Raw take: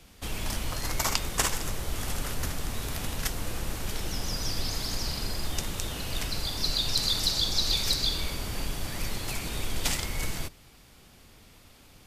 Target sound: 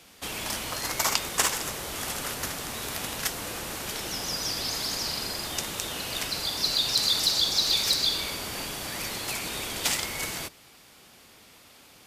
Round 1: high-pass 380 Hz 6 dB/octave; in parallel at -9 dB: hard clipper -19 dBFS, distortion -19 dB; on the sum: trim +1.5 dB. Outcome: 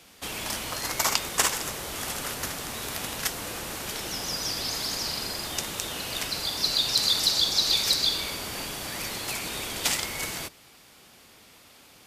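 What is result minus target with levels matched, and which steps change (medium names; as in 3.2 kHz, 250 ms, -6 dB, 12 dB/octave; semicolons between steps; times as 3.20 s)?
hard clipper: distortion -10 dB
change: hard clipper -27.5 dBFS, distortion -9 dB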